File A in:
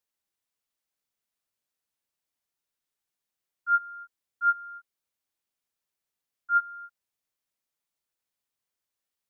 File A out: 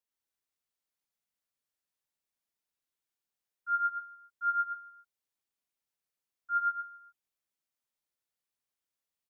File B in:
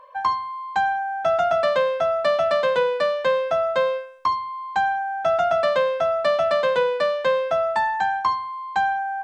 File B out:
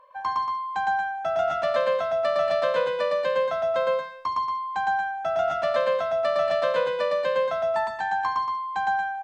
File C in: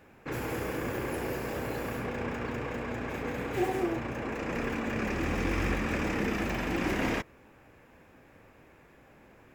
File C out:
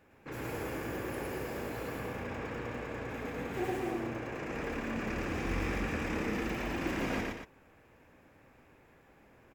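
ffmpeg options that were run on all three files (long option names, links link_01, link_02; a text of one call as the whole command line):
ffmpeg -i in.wav -af "aecho=1:1:110.8|230.3:0.891|0.447,volume=-7dB" out.wav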